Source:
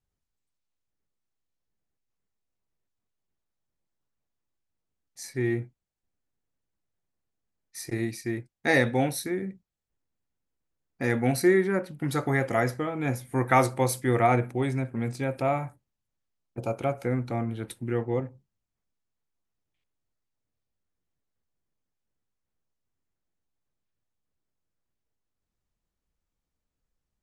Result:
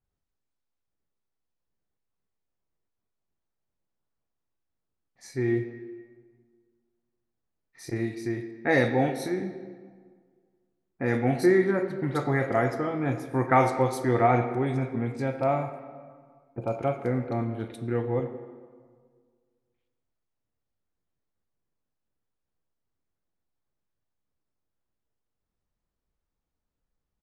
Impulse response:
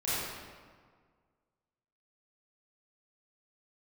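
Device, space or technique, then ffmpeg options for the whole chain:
filtered reverb send: -filter_complex "[0:a]asettb=1/sr,asplit=3[link_01][link_02][link_03];[link_01]atrim=end=14.024[link_04];[link_02]atrim=start=14.02:end=14.47,asetpts=PTS-STARTPTS,afade=type=in:duration=0.004:curve=qsin,afade=type=out:start_time=0.446:duration=0.004:curve=qsin,lowpass=frequency=7400:width=0.5412,lowpass=frequency=7400:width=1.3066[link_05];[link_03]atrim=start=14.466[link_06];[link_04][link_05]acrossfade=duration=0.004:curve1=hsin:curve2=qsin[link_07];[link_07][link_06]acrossfade=duration=0.004:curve1=qsin:curve2=hsin,aemphasis=mode=reproduction:type=50kf,acrossover=split=2500[link_08][link_09];[link_09]adelay=40[link_10];[link_08][link_10]amix=inputs=2:normalize=0,asplit=2[link_11][link_12];[link_12]highpass=210,lowpass=6100[link_13];[1:a]atrim=start_sample=2205[link_14];[link_13][link_14]afir=irnorm=-1:irlink=0,volume=-15dB[link_15];[link_11][link_15]amix=inputs=2:normalize=0"

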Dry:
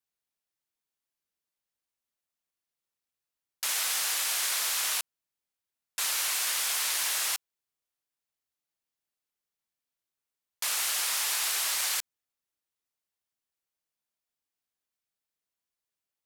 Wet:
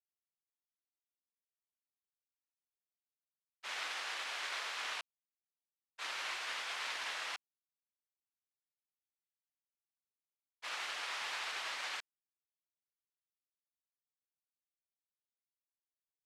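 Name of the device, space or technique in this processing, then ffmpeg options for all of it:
hearing-loss simulation: -filter_complex "[0:a]lowpass=2900,agate=range=-33dB:threshold=-31dB:ratio=3:detection=peak,asettb=1/sr,asplit=3[link_01][link_02][link_03];[link_01]atrim=end=3.934[link_04];[link_02]atrim=start=3.93:end=4.82,asetpts=PTS-STARTPTS,afade=type=in:duration=0.004:curve=qsin,afade=type=out:start_time=0.886:duration=0.004:curve=qsin,highpass=frequency=240:width=0.5412,highpass=frequency=240:width=1.3066[link_05];[link_03]atrim=start=4.816[link_06];[link_04][link_05]acrossfade=duration=0.004:curve1=hsin:curve2=qsin[link_07];[link_07][link_06]acrossfade=duration=0.004:curve1=qsin:curve2=hsin,volume=1dB"

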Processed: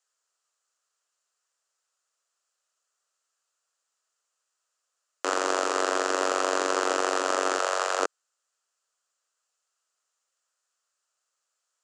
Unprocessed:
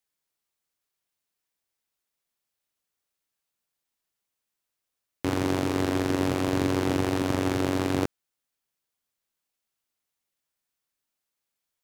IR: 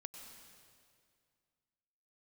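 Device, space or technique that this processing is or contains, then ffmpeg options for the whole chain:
phone speaker on a table: -filter_complex "[0:a]highpass=frequency=490:width=0.5412,highpass=frequency=490:width=1.3066,equalizer=frequency=850:width_type=q:width=4:gain=-5,equalizer=frequency=1300:width_type=q:width=4:gain=7,equalizer=frequency=2200:width_type=q:width=4:gain=-9,equalizer=frequency=3600:width_type=q:width=4:gain=-6,equalizer=frequency=7200:width_type=q:width=4:gain=7,lowpass=frequency=8200:width=0.5412,lowpass=frequency=8200:width=1.3066,asettb=1/sr,asplit=3[link_01][link_02][link_03];[link_01]atrim=end=7.594[link_04];[link_02]atrim=start=7.59:end=8,asetpts=PTS-STARTPTS,afade=type=in:duration=0.004:curve=qsin,afade=type=out:start_time=0.406:duration=0.004:curve=qsin,highpass=frequency=480:width=0.5412,highpass=frequency=480:width=1.3066[link_05];[link_03]atrim=start=7.996[link_06];[link_04][link_05]acrossfade=duration=0.004:curve1=hsin:curve2=qsin[link_07];[link_07][link_06]acrossfade=duration=0.004:curve1=qsin:curve2=hsin,volume=6.5dB"

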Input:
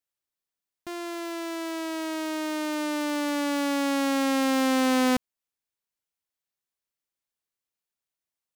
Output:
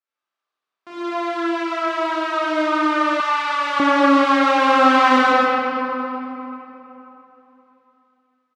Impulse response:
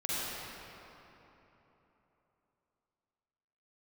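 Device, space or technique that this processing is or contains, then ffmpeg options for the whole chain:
station announcement: -filter_complex "[0:a]highpass=340,lowpass=3700,equalizer=frequency=1200:width_type=o:width=0.44:gain=10,aecho=1:1:32.07|157.4:0.708|0.794[link_01];[1:a]atrim=start_sample=2205[link_02];[link_01][link_02]afir=irnorm=-1:irlink=0,asettb=1/sr,asplit=3[link_03][link_04][link_05];[link_03]atrim=end=3.204[link_06];[link_04]atrim=start=3.2:end=3.8,asetpts=PTS-STARTPTS,afade=type=in:duration=0.004:curve=qsin,afade=type=out:start_time=0.596:duration=0.004:curve=qsin,highpass=930[link_07];[link_05]atrim=start=3.796[link_08];[link_06][link_07]acrossfade=duration=0.004:curve1=hsin:curve2=qsin[link_09];[link_09][link_08]acrossfade=duration=0.004:curve1=qsin:curve2=hsin"

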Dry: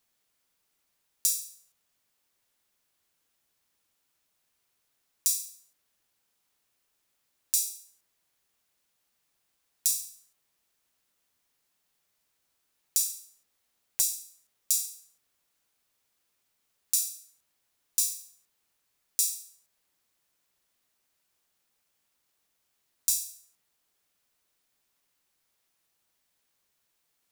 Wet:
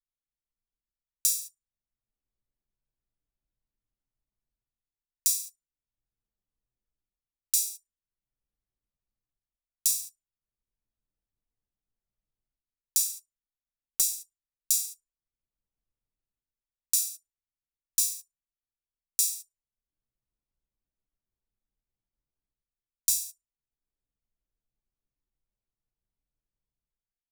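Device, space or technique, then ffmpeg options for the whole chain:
voice memo with heavy noise removal: -af "anlmdn=0.0398,dynaudnorm=framelen=160:gausssize=7:maxgain=16dB,volume=-1dB"

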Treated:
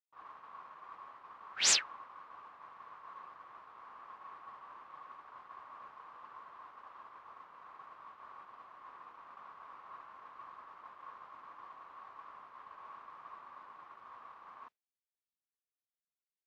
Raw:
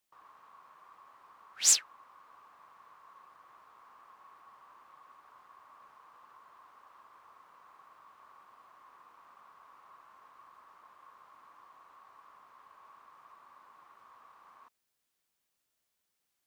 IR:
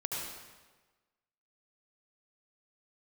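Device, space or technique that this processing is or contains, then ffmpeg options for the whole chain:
hearing-loss simulation: -af "lowpass=3400,agate=range=-33dB:threshold=-54dB:ratio=3:detection=peak,volume=8dB"

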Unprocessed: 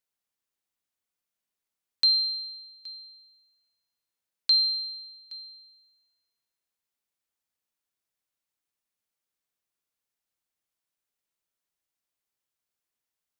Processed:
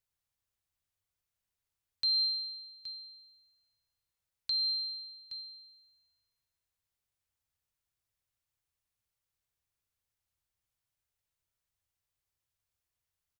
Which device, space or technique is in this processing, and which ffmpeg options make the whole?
car stereo with a boomy subwoofer: -filter_complex "[0:a]lowshelf=frequency=150:width_type=q:width=1.5:gain=12.5,alimiter=limit=-23.5dB:level=0:latency=1,asettb=1/sr,asplit=3[link_01][link_02][link_03];[link_01]atrim=end=4.504[link_04];[link_02]atrim=start=4.5:end=5.35,asetpts=PTS-STARTPTS,afade=type=in:duration=0.004:curve=qsin,afade=type=out:start_time=0.846:duration=0.004:curve=qsin,acrossover=split=4300[link_05][link_06];[link_06]acompressor=threshold=-39dB:ratio=4:attack=1:release=60[link_07];[link_05][link_07]amix=inputs=2:normalize=0[link_08];[link_03]atrim=start=5.346[link_09];[link_04][link_08]acrossfade=duration=0.004:curve1=hsin:curve2=qsin[link_10];[link_10][link_09]acrossfade=duration=0.004:curve1=qsin:curve2=hsin,asplit=2[link_11][link_12];[link_12]adelay=63,lowpass=frequency=1200:poles=1,volume=-17.5dB,asplit=2[link_13][link_14];[link_14]adelay=63,lowpass=frequency=1200:poles=1,volume=0.35,asplit=2[link_15][link_16];[link_16]adelay=63,lowpass=frequency=1200:poles=1,volume=0.35[link_17];[link_11][link_13][link_15][link_17]amix=inputs=4:normalize=0,volume=-1.5dB"

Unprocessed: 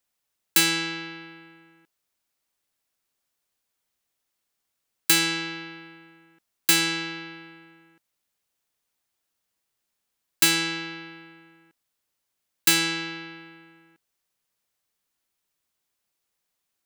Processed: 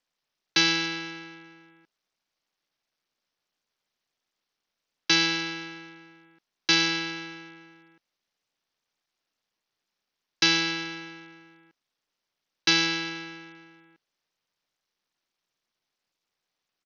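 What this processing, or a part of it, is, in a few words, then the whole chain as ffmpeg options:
Bluetooth headset: -af "highpass=120,aresample=16000,aresample=44100" -ar 48000 -c:a sbc -b:a 64k

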